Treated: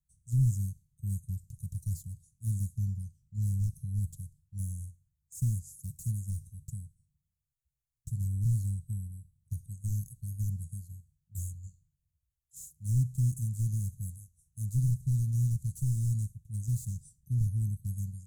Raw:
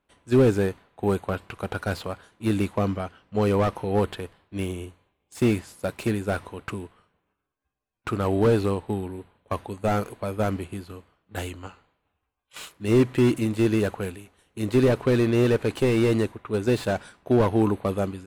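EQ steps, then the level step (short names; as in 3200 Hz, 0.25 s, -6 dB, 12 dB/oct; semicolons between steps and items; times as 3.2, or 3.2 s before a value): Chebyshev band-stop 150–6600 Hz, order 4; 0.0 dB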